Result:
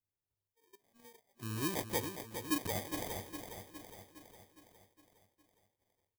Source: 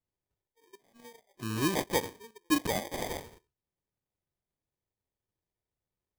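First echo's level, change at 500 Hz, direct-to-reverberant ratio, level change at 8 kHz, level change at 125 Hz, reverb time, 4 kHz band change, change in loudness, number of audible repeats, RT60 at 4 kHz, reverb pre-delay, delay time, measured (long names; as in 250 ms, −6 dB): −8.0 dB, −7.0 dB, no reverb audible, −3.5 dB, −4.0 dB, no reverb audible, −6.0 dB, −6.5 dB, 6, no reverb audible, no reverb audible, 411 ms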